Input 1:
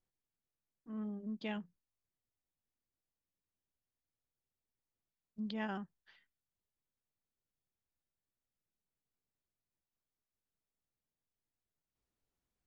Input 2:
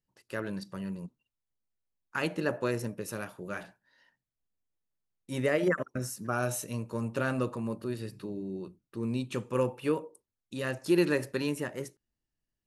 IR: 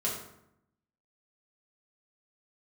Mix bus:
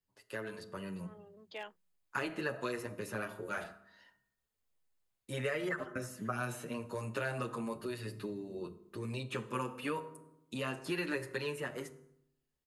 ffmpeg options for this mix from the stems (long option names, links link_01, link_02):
-filter_complex "[0:a]highpass=frequency=410:width=0.5412,highpass=frequency=410:width=1.3066,aeval=exprs='0.0188*(abs(mod(val(0)/0.0188+3,4)-2)-1)':channel_layout=same,adelay=100,volume=-3dB[link_01];[1:a]equalizer=frequency=180:width_type=o:width=1.5:gain=-4,asplit=2[link_02][link_03];[link_03]adelay=7.8,afreqshift=1[link_04];[link_02][link_04]amix=inputs=2:normalize=1,volume=1.5dB,asplit=3[link_05][link_06][link_07];[link_06]volume=-16dB[link_08];[link_07]apad=whole_len=562917[link_09];[link_01][link_09]sidechaincompress=threshold=-34dB:ratio=8:attack=16:release=265[link_10];[2:a]atrim=start_sample=2205[link_11];[link_08][link_11]afir=irnorm=-1:irlink=0[link_12];[link_10][link_05][link_12]amix=inputs=3:normalize=0,acrossover=split=130|980|3000[link_13][link_14][link_15][link_16];[link_13]acompressor=threshold=-57dB:ratio=4[link_17];[link_14]acompressor=threshold=-42dB:ratio=4[link_18];[link_15]acompressor=threshold=-42dB:ratio=4[link_19];[link_16]acompressor=threshold=-56dB:ratio=4[link_20];[link_17][link_18][link_19][link_20]amix=inputs=4:normalize=0,bandreject=frequency=5700:width=12,dynaudnorm=framelen=180:gausssize=11:maxgain=3.5dB"